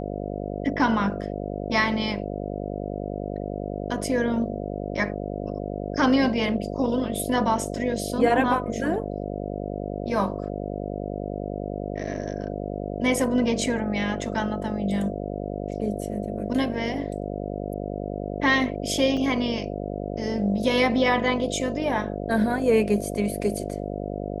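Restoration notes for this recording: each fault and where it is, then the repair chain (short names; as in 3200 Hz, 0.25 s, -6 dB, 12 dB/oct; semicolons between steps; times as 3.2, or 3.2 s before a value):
buzz 50 Hz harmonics 14 -31 dBFS
19.17 gap 2.7 ms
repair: de-hum 50 Hz, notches 14; interpolate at 19.17, 2.7 ms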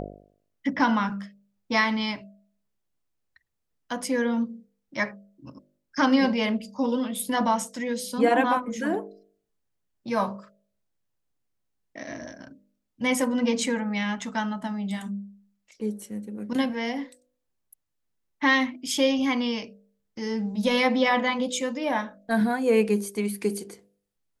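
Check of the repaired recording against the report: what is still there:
none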